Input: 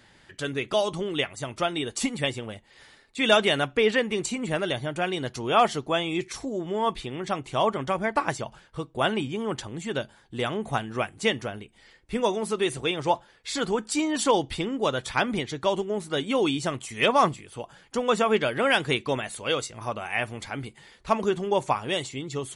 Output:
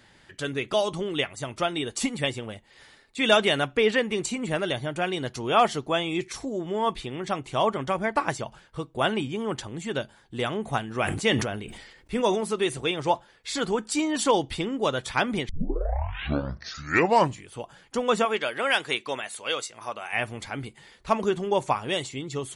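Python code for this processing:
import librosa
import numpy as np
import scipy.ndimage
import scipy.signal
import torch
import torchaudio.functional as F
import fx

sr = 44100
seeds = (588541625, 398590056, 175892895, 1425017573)

y = fx.sustainer(x, sr, db_per_s=50.0, at=(10.88, 12.41))
y = fx.highpass(y, sr, hz=680.0, slope=6, at=(18.25, 20.13))
y = fx.edit(y, sr, fx.tape_start(start_s=15.49, length_s=2.01), tone=tone)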